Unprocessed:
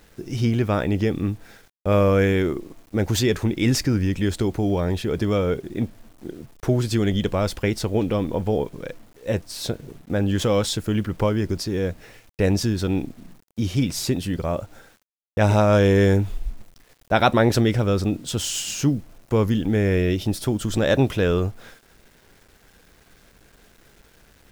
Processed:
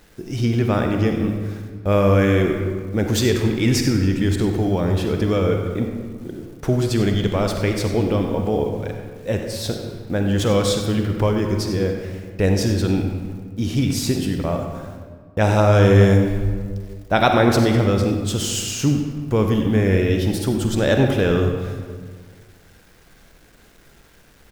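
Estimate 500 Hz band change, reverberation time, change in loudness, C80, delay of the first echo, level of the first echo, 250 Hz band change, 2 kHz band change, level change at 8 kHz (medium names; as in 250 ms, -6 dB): +2.5 dB, 1.7 s, +2.5 dB, 5.5 dB, 96 ms, -13.0 dB, +3.0 dB, +2.5 dB, +2.0 dB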